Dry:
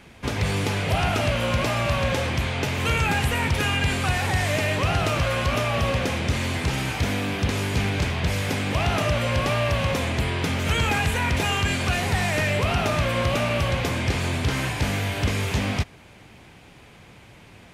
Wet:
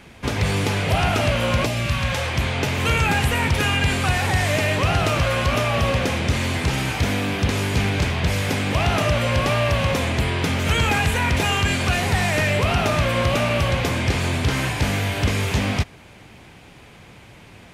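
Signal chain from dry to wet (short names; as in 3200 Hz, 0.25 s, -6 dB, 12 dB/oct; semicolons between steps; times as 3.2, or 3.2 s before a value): 1.65–2.35 bell 1500 Hz -> 180 Hz -12.5 dB 1.3 oct; gain +3 dB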